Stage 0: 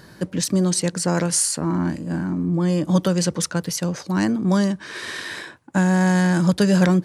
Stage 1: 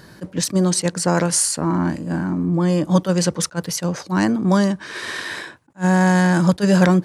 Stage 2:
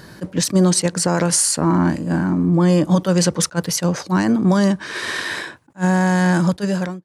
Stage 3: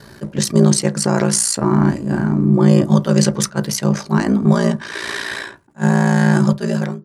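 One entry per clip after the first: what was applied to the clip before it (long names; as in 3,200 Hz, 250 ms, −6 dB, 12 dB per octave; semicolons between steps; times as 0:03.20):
dynamic equaliser 910 Hz, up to +4 dB, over −36 dBFS, Q 0.73; level that may rise only so fast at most 400 dB per second; level +1.5 dB
fade-out on the ending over 0.93 s; boost into a limiter +9.5 dB; level −6 dB
ring modulation 29 Hz; on a send at −8.5 dB: convolution reverb RT60 0.20 s, pre-delay 3 ms; on the sum: level +2.5 dB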